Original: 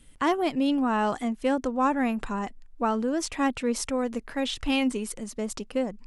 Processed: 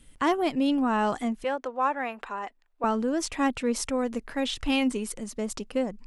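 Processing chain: 1.44–2.84 s: three-band isolator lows -22 dB, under 410 Hz, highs -12 dB, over 4 kHz

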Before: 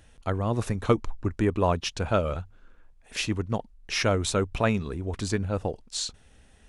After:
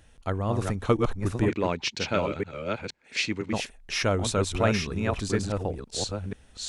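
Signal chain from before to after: chunks repeated in reverse 487 ms, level -3.5 dB; 1.48–3.53 s: cabinet simulation 150–7800 Hz, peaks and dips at 700 Hz -6 dB, 1.1 kHz -5 dB, 2.2 kHz +10 dB, 4.3 kHz +6 dB; trim -1 dB

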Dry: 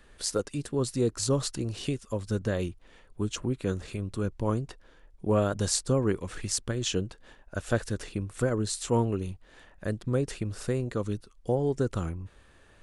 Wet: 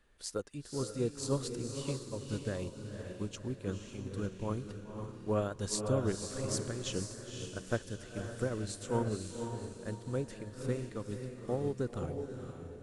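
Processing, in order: on a send: echo that smears into a reverb 520 ms, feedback 47%, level -3.5 dB; on the sum: upward expansion 1.5:1, over -35 dBFS; trim -6 dB

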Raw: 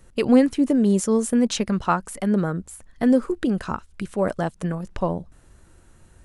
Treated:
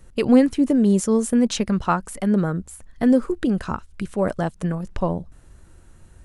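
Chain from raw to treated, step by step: bass shelf 150 Hz +5 dB

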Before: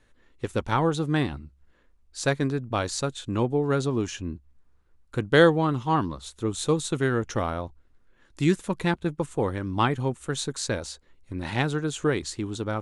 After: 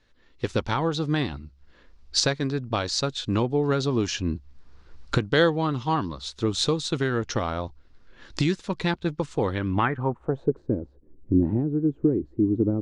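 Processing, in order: recorder AGC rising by 15 dB/s; low-pass sweep 4.9 kHz -> 320 Hz, 9.43–10.66 s; trim -3.5 dB

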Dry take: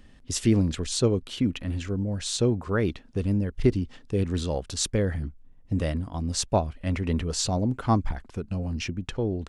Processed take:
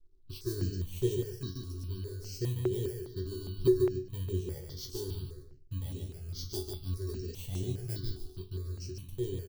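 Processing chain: bit-reversed sample order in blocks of 32 samples; treble shelf 5.1 kHz +4 dB; chord resonator F#2 sus4, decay 0.28 s; feedback delay 146 ms, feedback 29%, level -4 dB; hysteresis with a dead band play -55 dBFS; FFT filter 130 Hz 0 dB, 250 Hz -13 dB, 380 Hz +9 dB, 540 Hz -14 dB, 790 Hz -17 dB, 2.2 kHz -17 dB, 3.9 kHz +1 dB, 11 kHz -14 dB; stepped phaser 4.9 Hz 570–4800 Hz; trim +4 dB

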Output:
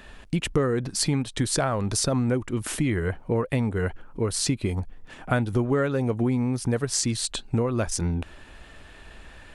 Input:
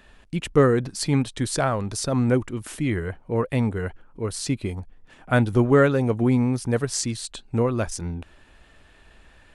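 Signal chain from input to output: compression 5:1, threshold -28 dBFS, peak gain reduction 14.5 dB; trim +6.5 dB

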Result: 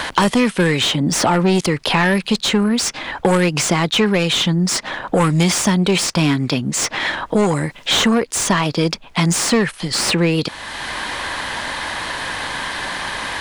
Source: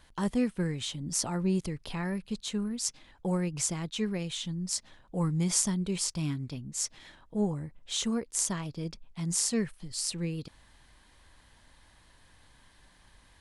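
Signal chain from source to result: overdrive pedal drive 28 dB, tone 2.8 kHz, clips at -9.5 dBFS; three bands compressed up and down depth 70%; trim +6 dB

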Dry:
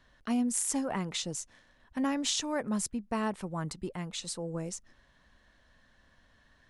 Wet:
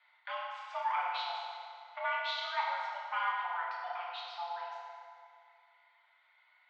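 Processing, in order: reverb removal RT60 1.5 s; mistuned SSB +350 Hz 370–3400 Hz; FDN reverb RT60 2.3 s, high-frequency decay 0.75×, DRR -5.5 dB; trim -3.5 dB

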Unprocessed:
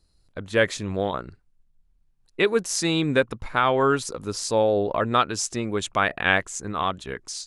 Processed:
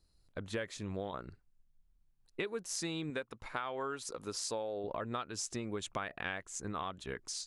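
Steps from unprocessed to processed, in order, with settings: 3.10–4.84 s: bass shelf 230 Hz -10.5 dB; compression 10:1, threshold -28 dBFS, peak gain reduction 14.5 dB; trim -6.5 dB

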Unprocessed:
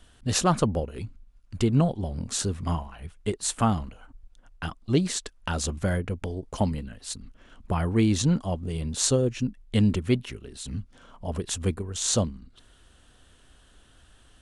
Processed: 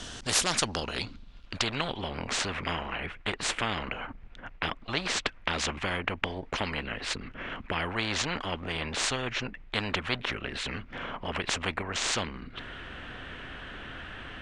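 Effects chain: low-pass sweep 6.1 kHz -> 2.2 kHz, 0.37–2.30 s; spectrum-flattening compressor 4:1; trim -1.5 dB

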